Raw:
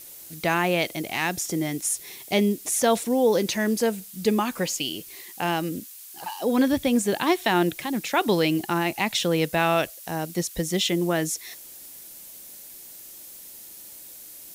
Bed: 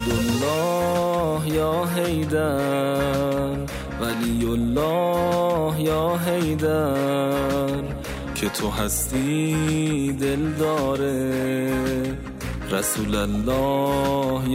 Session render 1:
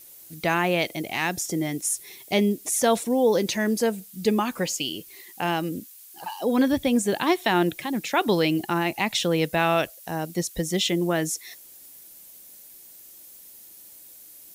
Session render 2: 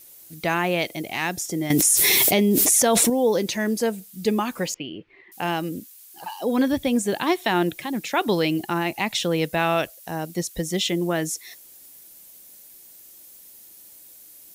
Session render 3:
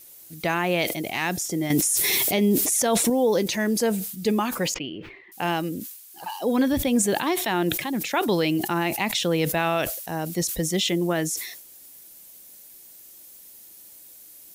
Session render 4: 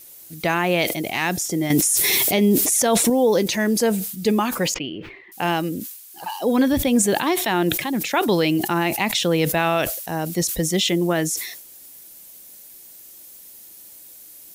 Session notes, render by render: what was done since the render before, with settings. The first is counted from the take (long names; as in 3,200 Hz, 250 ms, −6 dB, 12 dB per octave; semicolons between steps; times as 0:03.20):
broadband denoise 6 dB, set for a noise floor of −44 dBFS
0:01.70–0:03.10: envelope flattener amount 100%; 0:04.74–0:05.32: low-pass filter 2,400 Hz 24 dB per octave
brickwall limiter −13 dBFS, peak gain reduction 10 dB; level that may fall only so fast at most 66 dB per second
level +3.5 dB